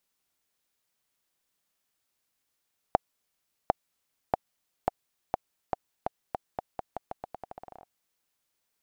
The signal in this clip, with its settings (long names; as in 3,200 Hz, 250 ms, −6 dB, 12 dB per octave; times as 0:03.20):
bouncing ball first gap 0.75 s, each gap 0.85, 742 Hz, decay 18 ms −6.5 dBFS